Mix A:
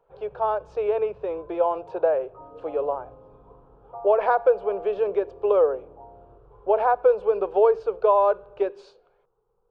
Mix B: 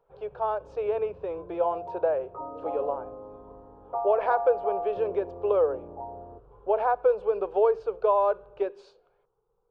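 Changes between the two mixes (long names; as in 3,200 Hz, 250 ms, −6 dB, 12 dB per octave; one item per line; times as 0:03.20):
speech −4.0 dB
first sound: send −7.5 dB
second sound +8.0 dB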